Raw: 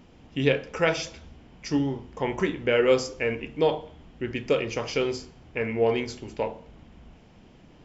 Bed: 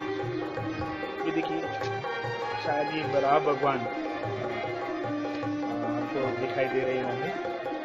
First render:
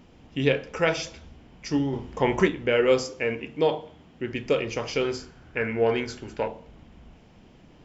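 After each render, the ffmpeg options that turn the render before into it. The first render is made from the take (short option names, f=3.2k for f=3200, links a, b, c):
-filter_complex "[0:a]asettb=1/sr,asplit=3[a][b][c];[a]atrim=end=3.054[d];[b]atrim=start=3.05:end=4.33,asetpts=PTS-STARTPTS,afade=t=in:d=0.004:c=qsin,afade=t=out:st=1.276:d=0.004:c=qsin,highpass=99[e];[c]atrim=start=4.326[f];[d][e]acrossfade=d=0.004:c1=hsin:c2=qsin[g];[g][f]acrossfade=d=0.004:c1=qsin:c2=hsin,asettb=1/sr,asplit=3[h][i][j];[h]atrim=end=5.044[k];[i]atrim=start=5.04:end=6.48,asetpts=PTS-STARTPTS,afade=t=in:d=0.004:c=qsin,afade=t=out:st=1.436:d=0.004:c=qsin,equalizer=f=1.5k:w=3.7:g=11.5[l];[j]atrim=start=6.476[m];[k][l]acrossfade=d=0.004:c1=hsin:c2=qsin[n];[n][m]acrossfade=d=0.004:c1=qsin:c2=hsin,asplit=3[o][p][q];[o]atrim=end=1.932[r];[p]atrim=start=1.928:end=2.482,asetpts=PTS-STARTPTS,volume=5dB[s];[q]atrim=start=2.478[t];[r][s]acrossfade=d=0.004:c1=hsin:c2=hsin[u];[u][t]acrossfade=d=0.004:c1=hsin:c2=hsin"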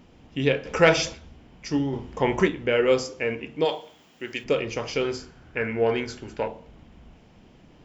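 -filter_complex "[0:a]asettb=1/sr,asplit=3[a][b][c];[a]atrim=end=0.654[d];[b]atrim=start=0.65:end=1.14,asetpts=PTS-STARTPTS,afade=t=in:d=0.004:c=qsin,afade=t=out:st=0.486:d=0.004:c=qsin,acontrast=72[e];[c]atrim=start=1.136[f];[d][e]acrossfade=d=0.004:c1=hsin:c2=qsin[g];[g][f]acrossfade=d=0.004:c1=qsin:c2=hsin,asplit=3[h][i][j];[h]afade=t=out:st=3.64:d=0.02[k];[i]aemphasis=mode=production:type=riaa,afade=t=in:st=3.64:d=0.02,afade=t=out:st=4.43:d=0.02[l];[j]afade=t=in:st=4.43:d=0.02[m];[k][l][m]amix=inputs=3:normalize=0"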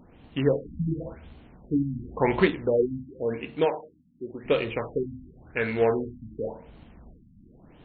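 -af "acrusher=bits=3:mode=log:mix=0:aa=0.000001,afftfilt=real='re*lt(b*sr/1024,270*pow(4500/270,0.5+0.5*sin(2*PI*0.92*pts/sr)))':imag='im*lt(b*sr/1024,270*pow(4500/270,0.5+0.5*sin(2*PI*0.92*pts/sr)))':win_size=1024:overlap=0.75"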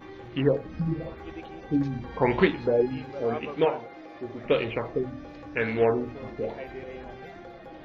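-filter_complex "[1:a]volume=-12dB[a];[0:a][a]amix=inputs=2:normalize=0"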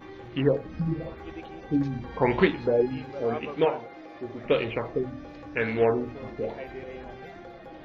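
-af anull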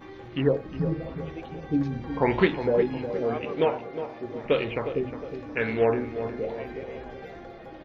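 -filter_complex "[0:a]asplit=2[a][b];[b]adelay=360,lowpass=f=1.6k:p=1,volume=-9.5dB,asplit=2[c][d];[d]adelay=360,lowpass=f=1.6k:p=1,volume=0.49,asplit=2[e][f];[f]adelay=360,lowpass=f=1.6k:p=1,volume=0.49,asplit=2[g][h];[h]adelay=360,lowpass=f=1.6k:p=1,volume=0.49,asplit=2[i][j];[j]adelay=360,lowpass=f=1.6k:p=1,volume=0.49[k];[a][c][e][g][i][k]amix=inputs=6:normalize=0"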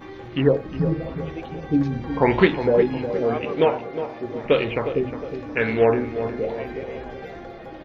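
-af "volume=5dB"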